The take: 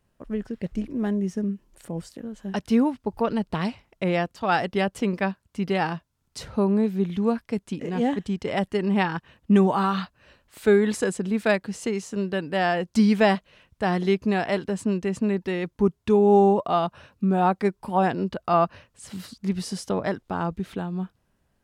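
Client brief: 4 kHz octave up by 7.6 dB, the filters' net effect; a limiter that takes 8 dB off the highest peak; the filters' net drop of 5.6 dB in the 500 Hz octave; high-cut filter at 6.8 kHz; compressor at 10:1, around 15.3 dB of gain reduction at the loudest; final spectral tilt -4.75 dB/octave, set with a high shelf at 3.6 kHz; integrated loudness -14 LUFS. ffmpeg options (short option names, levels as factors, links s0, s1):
-af "lowpass=6800,equalizer=f=500:t=o:g=-8,highshelf=f=3600:g=4.5,equalizer=f=4000:t=o:g=8,acompressor=threshold=0.0282:ratio=10,volume=15.8,alimiter=limit=0.708:level=0:latency=1"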